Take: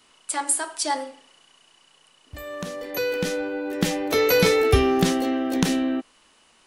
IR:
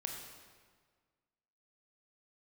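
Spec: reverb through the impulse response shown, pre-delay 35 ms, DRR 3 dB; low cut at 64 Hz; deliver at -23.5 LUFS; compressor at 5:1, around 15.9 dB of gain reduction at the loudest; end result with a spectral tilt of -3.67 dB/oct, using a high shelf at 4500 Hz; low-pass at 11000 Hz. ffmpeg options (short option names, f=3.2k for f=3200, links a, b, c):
-filter_complex "[0:a]highpass=64,lowpass=11k,highshelf=f=4.5k:g=7,acompressor=threshold=-33dB:ratio=5,asplit=2[a][b];[1:a]atrim=start_sample=2205,adelay=35[c];[b][c]afir=irnorm=-1:irlink=0,volume=-2.5dB[d];[a][d]amix=inputs=2:normalize=0,volume=10dB"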